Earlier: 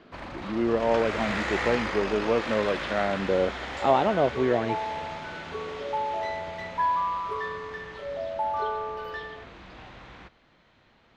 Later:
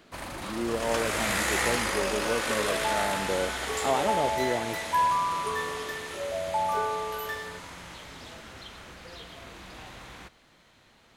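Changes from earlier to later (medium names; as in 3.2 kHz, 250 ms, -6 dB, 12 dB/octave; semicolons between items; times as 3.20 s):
speech -6.0 dB; second sound: entry -1.85 s; master: remove distance through air 190 m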